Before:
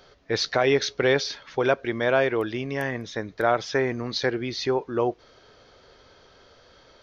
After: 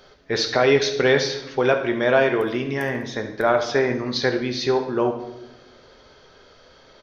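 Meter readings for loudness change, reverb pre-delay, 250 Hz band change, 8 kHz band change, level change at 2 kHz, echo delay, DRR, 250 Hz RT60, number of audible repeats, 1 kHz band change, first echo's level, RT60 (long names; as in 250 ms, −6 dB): +4.0 dB, 5 ms, +4.5 dB, can't be measured, +3.5 dB, 70 ms, 4.0 dB, 1.5 s, 1, +3.0 dB, −13.0 dB, 0.95 s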